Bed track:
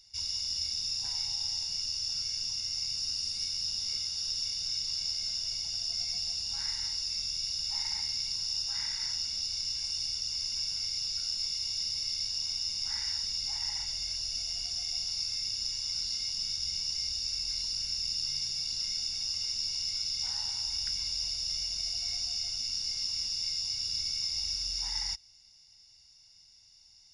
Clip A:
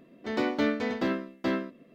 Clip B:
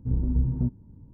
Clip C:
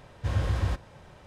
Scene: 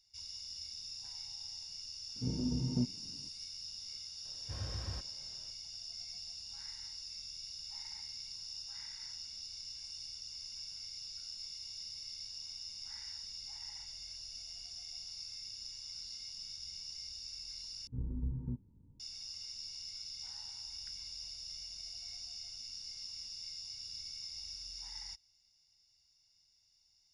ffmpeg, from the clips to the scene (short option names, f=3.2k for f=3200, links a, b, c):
-filter_complex "[2:a]asplit=2[a][b];[0:a]volume=-12.5dB[c];[a]highpass=180[d];[b]asuperstop=centerf=690:order=8:qfactor=2.9[e];[c]asplit=2[f][g];[f]atrim=end=17.874[h];[e]atrim=end=1.13,asetpts=PTS-STARTPTS,volume=-13.5dB[i];[g]atrim=start=18.996[j];[d]atrim=end=1.13,asetpts=PTS-STARTPTS,volume=-2dB,afade=t=in:d=0.004:c=hsin,afade=t=out:st=1.126:d=0.004:c=hsin,adelay=2160[k];[3:a]atrim=end=1.26,asetpts=PTS-STARTPTS,volume=-15dB,afade=t=in:d=0.004:c=hsin,afade=t=out:st=1.256:d=0.004:c=hsin,adelay=187425S[l];[h][i]acrossfade=d=0.004:c1=hsin:c2=hsin[m];[m][j]acrossfade=d=0.004:c1=hsin:c2=hsin[n];[n][k][l]amix=inputs=3:normalize=0"